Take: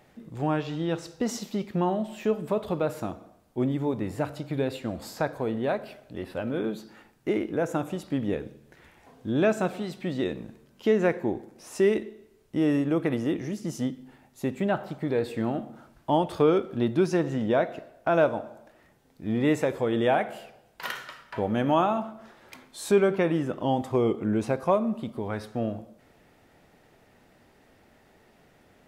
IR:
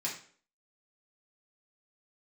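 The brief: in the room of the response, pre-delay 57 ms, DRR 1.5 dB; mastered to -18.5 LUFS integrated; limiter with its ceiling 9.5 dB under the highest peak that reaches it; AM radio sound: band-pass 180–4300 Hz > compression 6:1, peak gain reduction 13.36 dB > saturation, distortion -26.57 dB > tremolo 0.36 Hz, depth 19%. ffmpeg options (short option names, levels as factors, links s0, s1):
-filter_complex "[0:a]alimiter=limit=0.112:level=0:latency=1,asplit=2[s0][s1];[1:a]atrim=start_sample=2205,adelay=57[s2];[s1][s2]afir=irnorm=-1:irlink=0,volume=0.562[s3];[s0][s3]amix=inputs=2:normalize=0,highpass=180,lowpass=4300,acompressor=threshold=0.0224:ratio=6,asoftclip=threshold=0.0668,tremolo=f=0.36:d=0.19,volume=10.6"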